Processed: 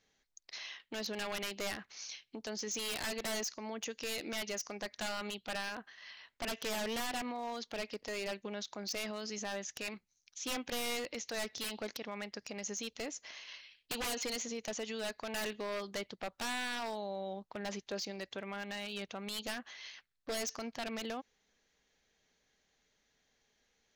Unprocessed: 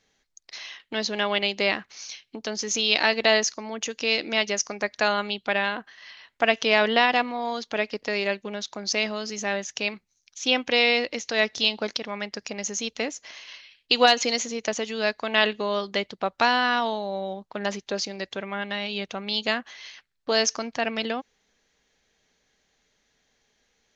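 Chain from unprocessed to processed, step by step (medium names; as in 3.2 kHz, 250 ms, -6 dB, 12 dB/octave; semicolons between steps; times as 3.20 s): wavefolder -20.5 dBFS; peak limiter -25 dBFS, peak gain reduction 4.5 dB; trim -6.5 dB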